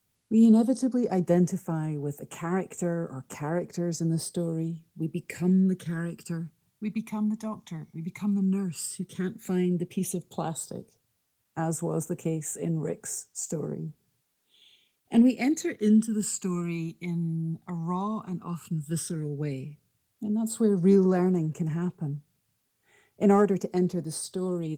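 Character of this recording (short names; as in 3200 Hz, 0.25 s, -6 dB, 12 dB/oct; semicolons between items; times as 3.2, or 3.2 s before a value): phasing stages 12, 0.1 Hz, lowest notch 480–4500 Hz; a quantiser's noise floor 12-bit, dither triangular; Opus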